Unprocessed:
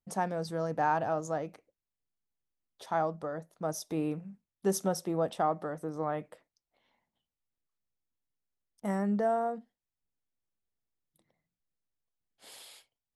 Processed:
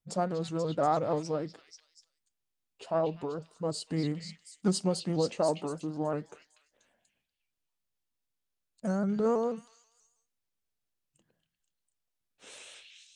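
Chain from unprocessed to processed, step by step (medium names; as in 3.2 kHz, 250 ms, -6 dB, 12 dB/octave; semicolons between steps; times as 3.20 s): formant shift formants -4 st; repeats whose band climbs or falls 242 ms, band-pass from 3.1 kHz, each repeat 0.7 oct, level -2 dB; vibrato with a chosen wave saw up 6.2 Hz, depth 100 cents; trim +1.5 dB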